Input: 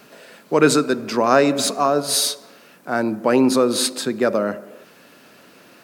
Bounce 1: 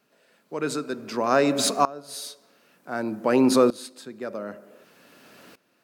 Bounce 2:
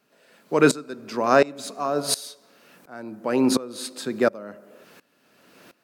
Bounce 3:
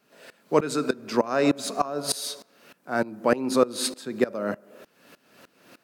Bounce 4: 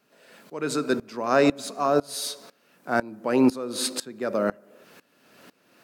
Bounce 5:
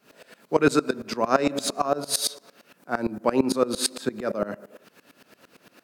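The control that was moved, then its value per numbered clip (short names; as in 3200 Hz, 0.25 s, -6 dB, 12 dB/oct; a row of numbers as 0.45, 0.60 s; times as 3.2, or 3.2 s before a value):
dB-ramp tremolo, rate: 0.54, 1.4, 3.3, 2, 8.8 Hz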